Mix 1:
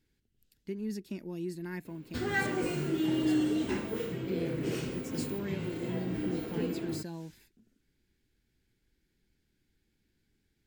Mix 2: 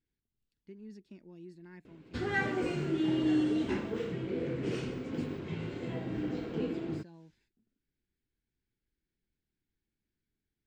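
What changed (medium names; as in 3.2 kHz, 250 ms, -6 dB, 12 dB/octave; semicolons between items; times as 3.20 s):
speech -12.0 dB; master: add distance through air 93 m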